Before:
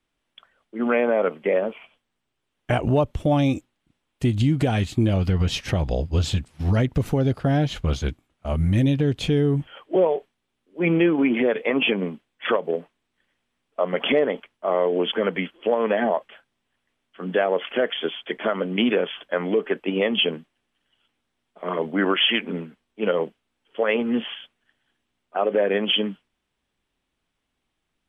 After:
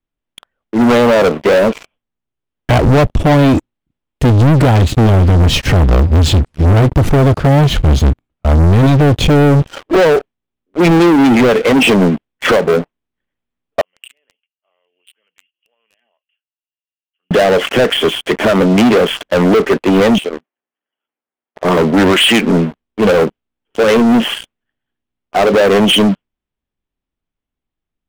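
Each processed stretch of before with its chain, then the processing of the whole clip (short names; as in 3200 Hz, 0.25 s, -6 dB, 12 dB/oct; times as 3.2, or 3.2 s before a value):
13.81–17.31 band-pass 2800 Hz, Q 19 + compressor 2:1, threshold -51 dBFS
20.18–21.65 compressor 16:1, threshold -29 dBFS + BPF 440–2800 Hz + air absorption 150 m
whole clip: tilt -2 dB/oct; sample leveller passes 5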